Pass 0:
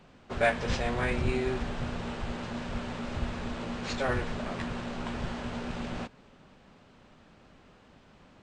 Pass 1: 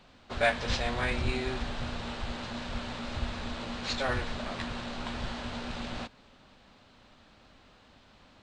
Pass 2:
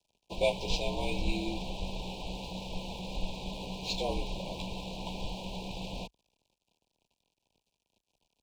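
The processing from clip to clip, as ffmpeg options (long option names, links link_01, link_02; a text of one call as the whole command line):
ffmpeg -i in.wav -af "equalizer=frequency=160:width_type=o:width=0.67:gain=-7,equalizer=frequency=400:width_type=o:width=0.67:gain=-5,equalizer=frequency=4000:width_type=o:width=0.67:gain=7" out.wav
ffmpeg -i in.wav -af "aeval=exprs='sgn(val(0))*max(abs(val(0))-0.00251,0)':channel_layout=same,asuperstop=centerf=1600:order=20:qfactor=1.2,afreqshift=-51" out.wav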